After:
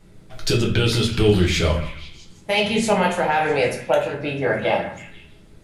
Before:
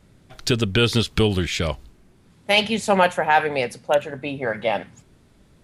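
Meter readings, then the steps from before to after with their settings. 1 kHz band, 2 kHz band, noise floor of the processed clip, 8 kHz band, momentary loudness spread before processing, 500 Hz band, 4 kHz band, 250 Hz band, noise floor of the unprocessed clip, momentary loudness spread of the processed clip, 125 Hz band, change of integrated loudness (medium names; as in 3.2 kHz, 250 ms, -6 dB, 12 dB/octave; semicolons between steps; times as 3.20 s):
-1.0 dB, -0.5 dB, -48 dBFS, +2.0 dB, 10 LU, +2.0 dB, -1.0 dB, +2.0 dB, -56 dBFS, 12 LU, +3.5 dB, +1.0 dB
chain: peak limiter -11.5 dBFS, peak gain reduction 7 dB; on a send: repeats whose band climbs or falls 164 ms, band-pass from 1.3 kHz, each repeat 0.7 oct, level -10.5 dB; on the sum: simulated room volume 41 m³, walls mixed, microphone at 0.72 m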